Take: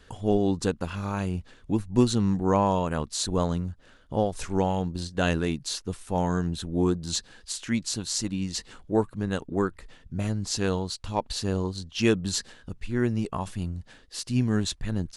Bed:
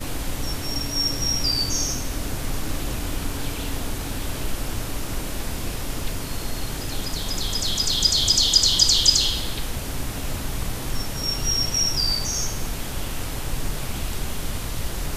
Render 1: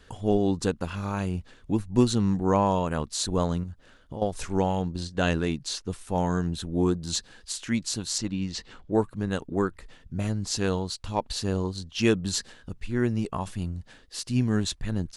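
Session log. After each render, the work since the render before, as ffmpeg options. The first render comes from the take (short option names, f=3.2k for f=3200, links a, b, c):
-filter_complex "[0:a]asettb=1/sr,asplit=3[a][b][c];[a]atrim=end=3.634[d];[b]atrim=start=3.63:end=4.22,asetpts=PTS-STARTPTS,afade=t=in:d=0.004:c=qsin,afade=t=out:st=0.586:d=0.004:c=qsin,acompressor=threshold=-32dB:ratio=5:attack=3.2:release=140:knee=1:detection=peak[e];[c]atrim=start=4.216[f];[d][e]acrossfade=d=0.004:c1=hsin:c2=qsin[g];[g][f]acrossfade=d=0.004:c1=qsin:c2=hsin,asettb=1/sr,asplit=3[h][i][j];[h]atrim=end=4.824[k];[i]atrim=start=4.82:end=5.9,asetpts=PTS-STARTPTS,afade=t=in:d=0.004:c=qsin,afade=t=out:st=1.076:d=0.004:c=qsin,lowpass=8.9k[l];[j]atrim=start=5.896[m];[k][l]acrossfade=d=0.004:c1=hsin:c2=qsin[n];[n][m]acrossfade=d=0.004:c1=qsin:c2=hsin,asettb=1/sr,asplit=3[o][p][q];[o]atrim=end=8.184[r];[p]atrim=start=8.18:end=8.93,asetpts=PTS-STARTPTS,afade=t=in:d=0.004:c=qsin,afade=t=out:st=0.746:d=0.004:c=qsin,lowpass=5.2k[s];[q]atrim=start=8.926[t];[r][s]acrossfade=d=0.004:c1=hsin:c2=qsin[u];[u][t]acrossfade=d=0.004:c1=qsin:c2=hsin"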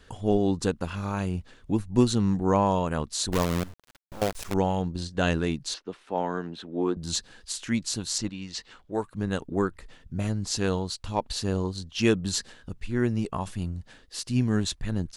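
-filter_complex "[0:a]asettb=1/sr,asplit=3[a][b][c];[a]atrim=end=3.324[d];[b]atrim=start=3.32:end=4.54,asetpts=PTS-STARTPTS,afade=t=in:d=0.004:c=qsin,afade=t=out:st=1.216:d=0.004:c=qsin,acrusher=bits=5:dc=4:mix=0:aa=0.000001[e];[c]atrim=start=4.536[f];[d][e]acrossfade=d=0.004:c1=hsin:c2=qsin[g];[g][f]acrossfade=d=0.004:c1=qsin:c2=hsin,asettb=1/sr,asplit=3[h][i][j];[h]atrim=end=5.744[k];[i]atrim=start=5.74:end=6.97,asetpts=PTS-STARTPTS,afade=t=in:d=0.004:c=qsin,afade=t=out:st=1.226:d=0.004:c=qsin,acrossover=split=220 4100:gain=0.0631 1 0.0708[l][m][n];[l][m][n]amix=inputs=3:normalize=0[o];[j]atrim=start=6.966[p];[k][o]acrossfade=d=0.004:c1=hsin:c2=qsin[q];[q][p]acrossfade=d=0.004:c1=qsin:c2=hsin,asettb=1/sr,asplit=3[r][s][t];[r]atrim=end=8.294[u];[s]atrim=start=8.29:end=9.15,asetpts=PTS-STARTPTS,afade=t=in:d=0.004:c=qsin,afade=t=out:st=0.856:d=0.004:c=qsin,lowshelf=f=480:g=-10[v];[t]atrim=start=9.146[w];[u][v]acrossfade=d=0.004:c1=hsin:c2=qsin[x];[x][w]acrossfade=d=0.004:c1=qsin:c2=hsin"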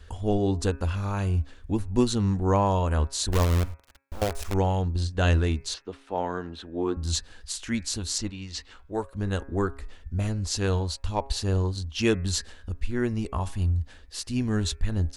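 -af "lowshelf=f=100:t=q:w=3:g=8,bandreject=f=136.7:t=h:w=4,bandreject=f=273.4:t=h:w=4,bandreject=f=410.1:t=h:w=4,bandreject=f=546.8:t=h:w=4,bandreject=f=683.5:t=h:w=4,bandreject=f=820.2:t=h:w=4,bandreject=f=956.9:t=h:w=4,bandreject=f=1.0936k:t=h:w=4,bandreject=f=1.2303k:t=h:w=4,bandreject=f=1.367k:t=h:w=4,bandreject=f=1.5037k:t=h:w=4,bandreject=f=1.6404k:t=h:w=4,bandreject=f=1.7771k:t=h:w=4,bandreject=f=1.9138k:t=h:w=4,bandreject=f=2.0505k:t=h:w=4,bandreject=f=2.1872k:t=h:w=4,bandreject=f=2.3239k:t=h:w=4,bandreject=f=2.4606k:t=h:w=4,bandreject=f=2.5973k:t=h:w=4"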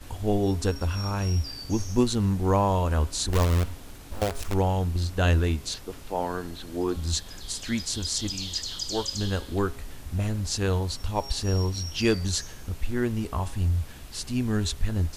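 -filter_complex "[1:a]volume=-16dB[a];[0:a][a]amix=inputs=2:normalize=0"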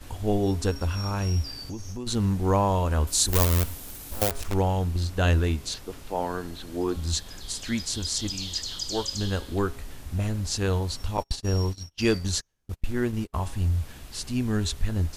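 -filter_complex "[0:a]asplit=3[a][b][c];[a]afade=t=out:st=1.62:d=0.02[d];[b]acompressor=threshold=-32dB:ratio=5:attack=3.2:release=140:knee=1:detection=peak,afade=t=in:st=1.62:d=0.02,afade=t=out:st=2.06:d=0.02[e];[c]afade=t=in:st=2.06:d=0.02[f];[d][e][f]amix=inputs=3:normalize=0,asettb=1/sr,asplit=3[g][h][i];[g]atrim=end=3.074[j];[h]atrim=start=3.07:end=4.31,asetpts=PTS-STARTPTS,afade=t=in:d=0.004:c=qsin,afade=t=out:st=1.236:d=0.004:c=qsin,aemphasis=mode=production:type=50fm[k];[i]atrim=start=4.306[l];[j][k]acrossfade=d=0.004:c1=hsin:c2=qsin[m];[m][l]acrossfade=d=0.004:c1=qsin:c2=hsin,asettb=1/sr,asplit=3[n][o][p];[n]atrim=end=11.174[q];[o]atrim=start=11.17:end=13.34,asetpts=PTS-STARTPTS,afade=t=in:d=0.004:c=qsin,afade=t=out:st=2.166:d=0.004:c=qsin,agate=range=-36dB:threshold=-30dB:ratio=16:release=100:detection=peak[r];[p]atrim=start=13.336[s];[q][r]acrossfade=d=0.004:c1=hsin:c2=qsin[t];[t][s]acrossfade=d=0.004:c1=qsin:c2=hsin"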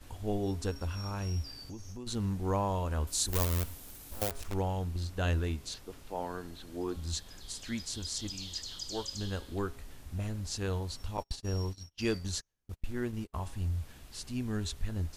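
-af "volume=-8.5dB"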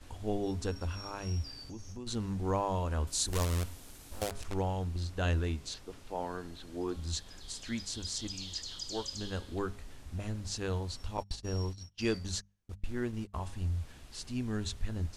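-af "lowpass=9.6k,bandreject=f=50:t=h:w=6,bandreject=f=100:t=h:w=6,bandreject=f=150:t=h:w=6,bandreject=f=200:t=h:w=6"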